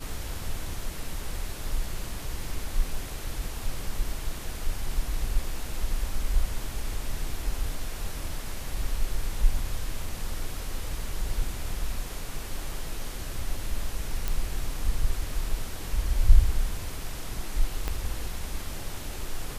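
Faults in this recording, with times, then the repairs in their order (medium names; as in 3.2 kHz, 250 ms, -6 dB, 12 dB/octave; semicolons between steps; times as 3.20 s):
14.28 s: pop
17.88 s: pop -15 dBFS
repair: de-click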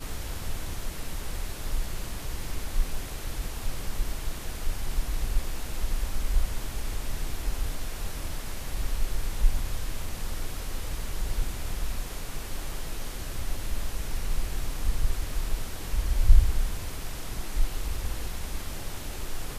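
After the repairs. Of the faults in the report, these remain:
17.88 s: pop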